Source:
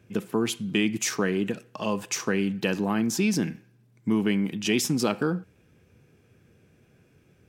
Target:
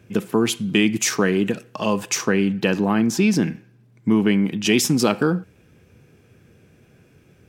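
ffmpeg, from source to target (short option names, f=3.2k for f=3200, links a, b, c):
-filter_complex "[0:a]asettb=1/sr,asplit=3[a][b][c];[a]atrim=end=2.264[d];[b]atrim=start=2.26:end=4.64,asetpts=PTS-STARTPTS,afade=t=in:d=0.004:c=qsin,afade=t=out:st=2.376:d=0.004:c=qsin,highshelf=f=5k:g=-7[e];[c]atrim=start=4.636[f];[d][e]acrossfade=d=0.004:c1=hsin:c2=qsin[g];[g][f]acrossfade=d=0.004:c1=qsin:c2=hsin,volume=6.5dB"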